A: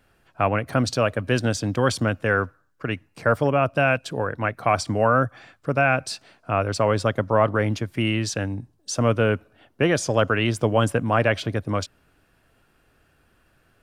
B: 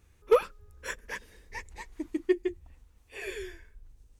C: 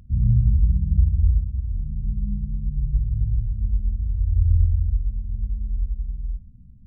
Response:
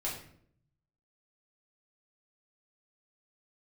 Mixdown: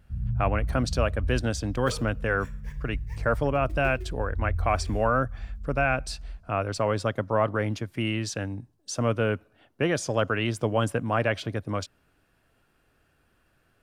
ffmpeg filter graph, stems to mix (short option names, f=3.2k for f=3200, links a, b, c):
-filter_complex "[0:a]volume=-5dB,asplit=2[a][b];[1:a]acrusher=bits=3:mode=log:mix=0:aa=0.000001,adelay=1550,volume=-13dB,asplit=2[c][d];[d]volume=-10dB[e];[2:a]volume=-11dB[f];[b]apad=whole_len=253430[g];[c][g]sidechaincompress=threshold=-28dB:ratio=8:attack=36:release=1050[h];[3:a]atrim=start_sample=2205[i];[e][i]afir=irnorm=-1:irlink=0[j];[a][h][f][j]amix=inputs=4:normalize=0"